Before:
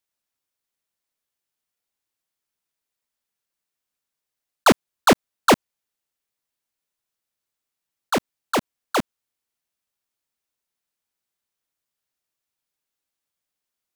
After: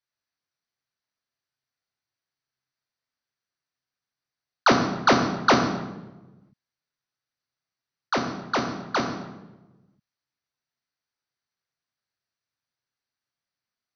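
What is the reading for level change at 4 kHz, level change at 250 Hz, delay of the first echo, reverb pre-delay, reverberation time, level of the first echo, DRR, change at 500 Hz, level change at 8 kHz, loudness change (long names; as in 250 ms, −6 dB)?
−2.0 dB, −1.5 dB, no echo audible, 3 ms, 1.1 s, no echo audible, 3.0 dB, −3.0 dB, −6.5 dB, −2.0 dB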